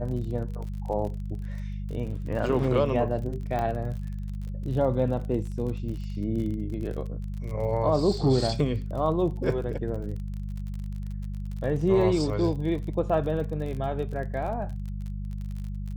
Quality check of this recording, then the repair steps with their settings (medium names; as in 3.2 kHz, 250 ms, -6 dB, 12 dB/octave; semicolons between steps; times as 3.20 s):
crackle 39 per s -35 dBFS
hum 50 Hz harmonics 4 -33 dBFS
3.59 s: pop -18 dBFS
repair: de-click; de-hum 50 Hz, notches 4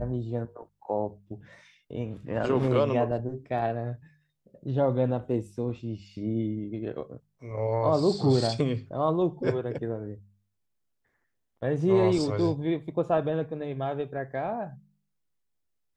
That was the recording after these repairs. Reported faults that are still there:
3.59 s: pop